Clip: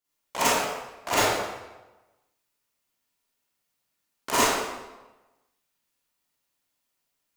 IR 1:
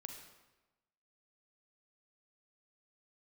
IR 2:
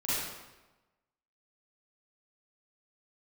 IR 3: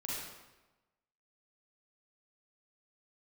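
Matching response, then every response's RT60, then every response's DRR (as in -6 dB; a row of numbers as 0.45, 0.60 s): 2; 1.1, 1.1, 1.1 s; 4.0, -12.0, -6.0 dB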